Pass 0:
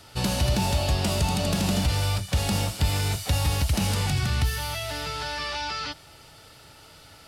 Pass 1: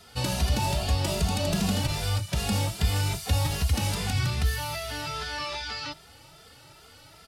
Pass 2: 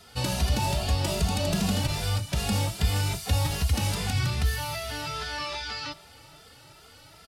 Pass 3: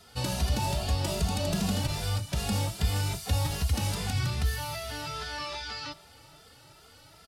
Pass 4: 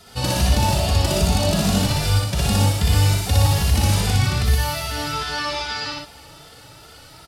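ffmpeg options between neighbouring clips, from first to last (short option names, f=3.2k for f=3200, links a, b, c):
-filter_complex "[0:a]asplit=2[a][b];[b]adelay=2.5,afreqshift=2.5[c];[a][c]amix=inputs=2:normalize=1,volume=1dB"
-filter_complex "[0:a]asplit=2[a][b];[b]adelay=460.6,volume=-21dB,highshelf=f=4k:g=-10.4[c];[a][c]amix=inputs=2:normalize=0"
-af "equalizer=f=2.4k:w=1.5:g=-2,volume=-2.5dB"
-af "aecho=1:1:61.22|119.5:0.891|0.631,volume=7dB"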